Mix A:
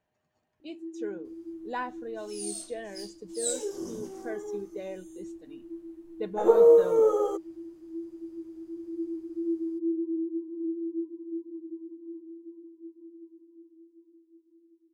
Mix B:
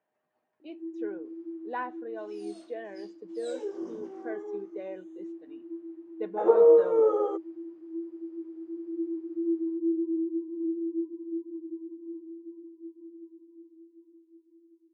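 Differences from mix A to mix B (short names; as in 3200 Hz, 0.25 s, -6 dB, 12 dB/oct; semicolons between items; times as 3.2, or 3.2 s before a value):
first sound +3.5 dB; master: add BPF 290–2200 Hz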